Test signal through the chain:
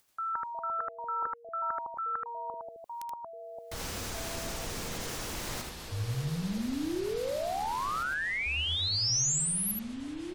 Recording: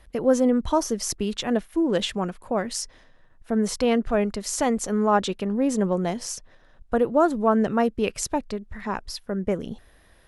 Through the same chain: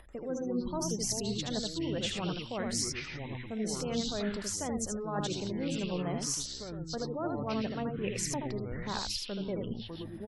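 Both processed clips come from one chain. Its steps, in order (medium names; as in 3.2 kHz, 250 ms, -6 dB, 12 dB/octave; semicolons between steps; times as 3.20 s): reverse; compression 8:1, threshold -28 dBFS; reverse; delay 78 ms -4 dB; upward compressor, threshold -46 dBFS; dynamic bell 6.1 kHz, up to +5 dB, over -44 dBFS, Q 1.4; spectral gate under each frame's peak -30 dB strong; ever faster or slower copies 88 ms, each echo -6 st, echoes 3, each echo -6 dB; trim -5 dB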